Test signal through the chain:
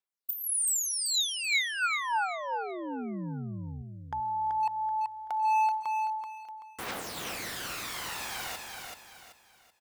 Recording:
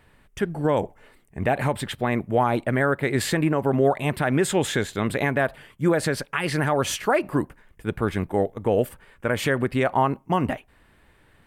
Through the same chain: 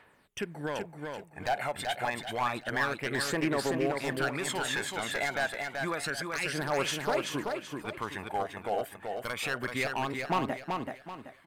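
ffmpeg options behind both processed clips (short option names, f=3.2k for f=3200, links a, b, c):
-filter_complex "[0:a]highpass=f=1k:p=1,highshelf=f=4.5k:g=-6,asplit=2[a][b];[b]acompressor=threshold=-34dB:ratio=16,volume=-0.5dB[c];[a][c]amix=inputs=2:normalize=0,aeval=exprs='0.15*(abs(mod(val(0)/0.15+3,4)-2)-1)':c=same,aphaser=in_gain=1:out_gain=1:delay=1.5:decay=0.59:speed=0.29:type=triangular,asoftclip=type=hard:threshold=-16dB,aecho=1:1:382|764|1146|1528:0.596|0.203|0.0689|0.0234,volume=-6.5dB"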